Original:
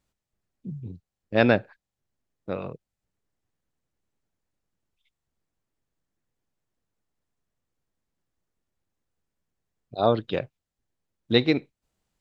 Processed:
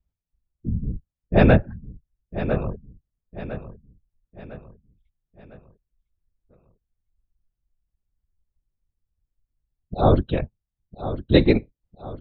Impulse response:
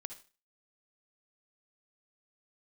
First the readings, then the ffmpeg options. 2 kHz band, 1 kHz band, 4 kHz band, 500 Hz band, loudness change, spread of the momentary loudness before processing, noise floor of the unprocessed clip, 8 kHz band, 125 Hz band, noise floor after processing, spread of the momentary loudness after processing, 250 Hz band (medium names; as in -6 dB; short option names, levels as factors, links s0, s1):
0.0 dB, +3.5 dB, -2.0 dB, +3.0 dB, +2.5 dB, 19 LU, under -85 dBFS, no reading, +10.5 dB, under -85 dBFS, 24 LU, +5.0 dB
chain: -filter_complex "[0:a]afftfilt=real='hypot(re,im)*cos(2*PI*random(0))':imag='hypot(re,im)*sin(2*PI*random(1))':win_size=512:overlap=0.75,aemphasis=mode=reproduction:type=bsi,afftdn=nr=14:nf=-55,asplit=2[s0][s1];[s1]aecho=0:1:1004|2008|3012|4016:0.251|0.111|0.0486|0.0214[s2];[s0][s2]amix=inputs=2:normalize=0,volume=2.37"